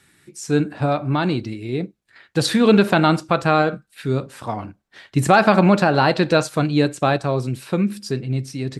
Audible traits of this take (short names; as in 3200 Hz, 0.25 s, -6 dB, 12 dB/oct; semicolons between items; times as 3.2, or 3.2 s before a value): noise floor -65 dBFS; spectral tilt -5.0 dB/oct